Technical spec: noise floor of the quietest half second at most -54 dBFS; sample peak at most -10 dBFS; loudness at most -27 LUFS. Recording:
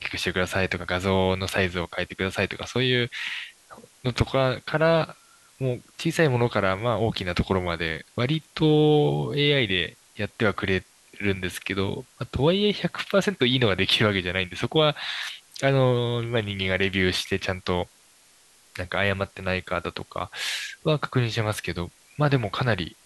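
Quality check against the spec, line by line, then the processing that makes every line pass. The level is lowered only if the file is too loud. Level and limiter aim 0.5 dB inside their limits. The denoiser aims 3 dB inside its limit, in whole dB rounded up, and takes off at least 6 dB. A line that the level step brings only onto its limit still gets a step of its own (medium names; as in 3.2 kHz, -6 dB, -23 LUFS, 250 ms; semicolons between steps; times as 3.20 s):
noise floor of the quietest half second -57 dBFS: pass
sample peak -5.5 dBFS: fail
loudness -25.0 LUFS: fail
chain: trim -2.5 dB; peak limiter -10.5 dBFS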